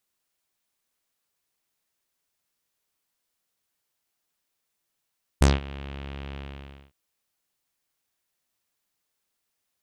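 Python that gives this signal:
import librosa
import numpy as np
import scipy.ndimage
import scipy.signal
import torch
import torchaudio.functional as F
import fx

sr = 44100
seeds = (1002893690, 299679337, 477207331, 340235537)

y = fx.sub_voice(sr, note=37, wave='saw', cutoff_hz=3000.0, q=2.7, env_oct=2.0, env_s=0.13, attack_ms=8.2, decay_s=0.18, sustain_db=-22.0, release_s=0.56, note_s=0.95, slope=12)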